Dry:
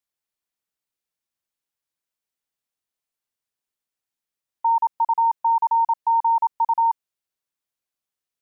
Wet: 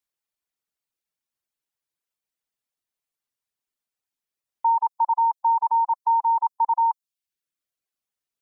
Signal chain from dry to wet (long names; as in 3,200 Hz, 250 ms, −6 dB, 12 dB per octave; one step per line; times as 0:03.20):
reverb reduction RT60 0.68 s